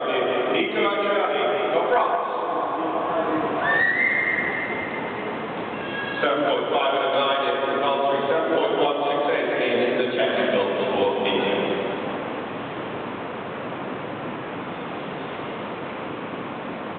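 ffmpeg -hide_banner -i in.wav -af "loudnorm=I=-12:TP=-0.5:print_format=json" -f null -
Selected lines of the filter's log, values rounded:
"input_i" : "-24.2",
"input_tp" : "-9.2",
"input_lra" : "9.5",
"input_thresh" : "-34.2",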